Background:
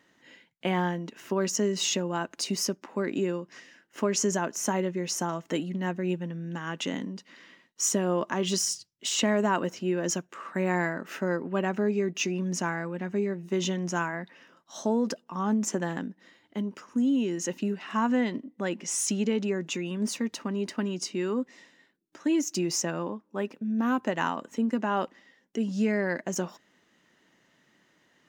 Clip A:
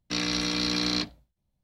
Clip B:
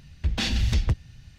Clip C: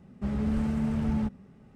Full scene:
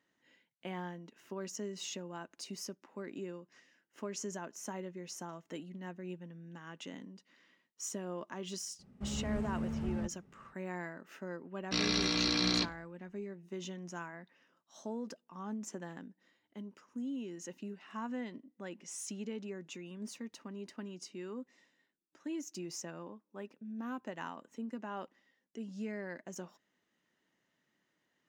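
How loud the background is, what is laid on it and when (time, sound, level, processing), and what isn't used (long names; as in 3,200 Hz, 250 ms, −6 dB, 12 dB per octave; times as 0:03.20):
background −14.5 dB
0:08.79: mix in C −9 dB
0:11.61: mix in A −3.5 dB + low-pass filter 8,000 Hz
not used: B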